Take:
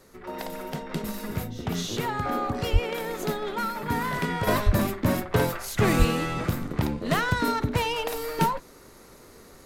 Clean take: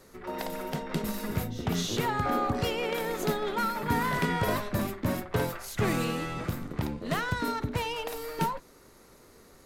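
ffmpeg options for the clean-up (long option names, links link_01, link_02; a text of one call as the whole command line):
ffmpeg -i in.wav -filter_complex "[0:a]asplit=3[link_01][link_02][link_03];[link_01]afade=type=out:start_time=2.72:duration=0.02[link_04];[link_02]highpass=frequency=140:width=0.5412,highpass=frequency=140:width=1.3066,afade=type=in:start_time=2.72:duration=0.02,afade=type=out:start_time=2.84:duration=0.02[link_05];[link_03]afade=type=in:start_time=2.84:duration=0.02[link_06];[link_04][link_05][link_06]amix=inputs=3:normalize=0,asplit=3[link_07][link_08][link_09];[link_07]afade=type=out:start_time=4.65:duration=0.02[link_10];[link_08]highpass=frequency=140:width=0.5412,highpass=frequency=140:width=1.3066,afade=type=in:start_time=4.65:duration=0.02,afade=type=out:start_time=4.77:duration=0.02[link_11];[link_09]afade=type=in:start_time=4.77:duration=0.02[link_12];[link_10][link_11][link_12]amix=inputs=3:normalize=0,asplit=3[link_13][link_14][link_15];[link_13]afade=type=out:start_time=5.98:duration=0.02[link_16];[link_14]highpass=frequency=140:width=0.5412,highpass=frequency=140:width=1.3066,afade=type=in:start_time=5.98:duration=0.02,afade=type=out:start_time=6.1:duration=0.02[link_17];[link_15]afade=type=in:start_time=6.1:duration=0.02[link_18];[link_16][link_17][link_18]amix=inputs=3:normalize=0,asetnsamples=nb_out_samples=441:pad=0,asendcmd='4.47 volume volume -5.5dB',volume=0dB" out.wav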